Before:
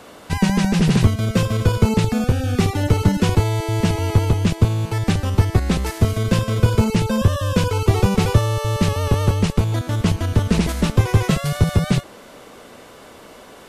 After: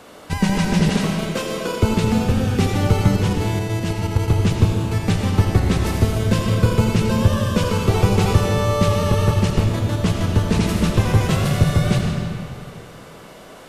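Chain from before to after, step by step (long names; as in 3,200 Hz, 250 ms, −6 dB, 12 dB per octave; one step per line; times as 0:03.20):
0:00.89–0:01.83: high-pass filter 280 Hz 24 dB per octave
0:03.16–0:04.28: output level in coarse steps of 10 dB
convolution reverb RT60 2.3 s, pre-delay 40 ms, DRR 1 dB
level −1.5 dB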